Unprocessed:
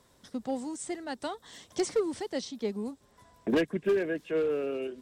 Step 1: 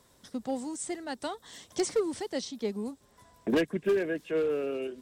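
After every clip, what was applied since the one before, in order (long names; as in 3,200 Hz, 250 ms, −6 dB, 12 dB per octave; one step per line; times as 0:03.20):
high-shelf EQ 6,900 Hz +5 dB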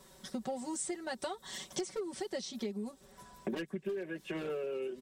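comb filter 5.3 ms, depth 100%
downward compressor 12 to 1, threshold −36 dBFS, peak gain reduction 19.5 dB
level +1.5 dB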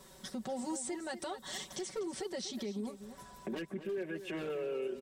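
brickwall limiter −33 dBFS, peak gain reduction 8.5 dB
slap from a distant wall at 42 metres, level −11 dB
level +2 dB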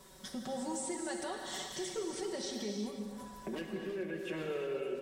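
reverb whose tail is shaped and stops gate 390 ms flat, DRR 2 dB
level −1 dB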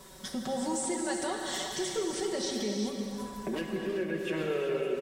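single-tap delay 383 ms −9.5 dB
level +6 dB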